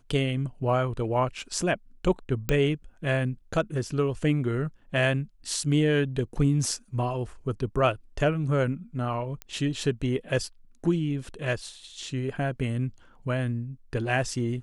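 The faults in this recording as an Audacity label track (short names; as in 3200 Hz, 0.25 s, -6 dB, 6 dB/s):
2.490000	2.490000	pop -12 dBFS
9.420000	9.420000	pop -20 dBFS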